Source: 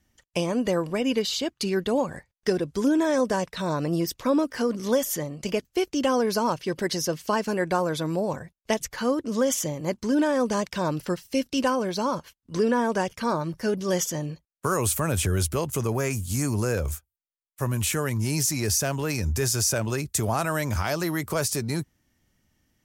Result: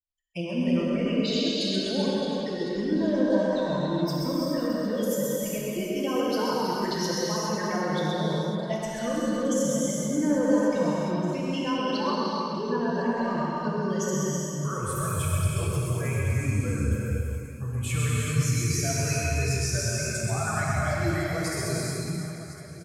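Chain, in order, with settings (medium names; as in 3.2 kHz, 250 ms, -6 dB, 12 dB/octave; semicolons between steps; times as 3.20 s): expander on every frequency bin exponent 2; low-pass 9.6 kHz 12 dB/octave; peaking EQ 77 Hz +10.5 dB 1.1 oct; in parallel at +2 dB: level held to a coarse grid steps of 10 dB; on the sum: peak limiter -21.5 dBFS, peak gain reduction 14.5 dB; flange 0.8 Hz, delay 1 ms, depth 7.6 ms, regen +53%; on a send: reverse bouncing-ball echo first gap 130 ms, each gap 1.5×, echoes 5; on the sum: gated-style reverb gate 460 ms flat, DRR -5 dB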